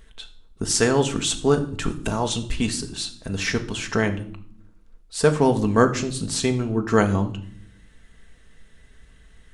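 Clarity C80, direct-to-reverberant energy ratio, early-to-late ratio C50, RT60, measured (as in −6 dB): 17.5 dB, 5.0 dB, 13.5 dB, 0.60 s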